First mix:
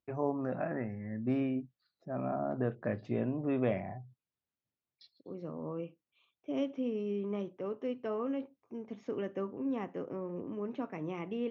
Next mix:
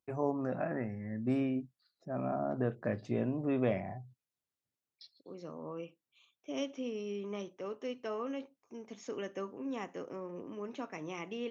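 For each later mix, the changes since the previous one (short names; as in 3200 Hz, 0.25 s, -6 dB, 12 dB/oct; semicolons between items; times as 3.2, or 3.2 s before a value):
second voice: add tilt +2.5 dB/oct; master: remove LPF 3800 Hz 12 dB/oct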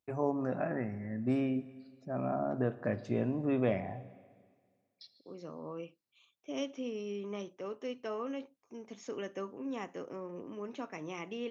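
reverb: on, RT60 1.8 s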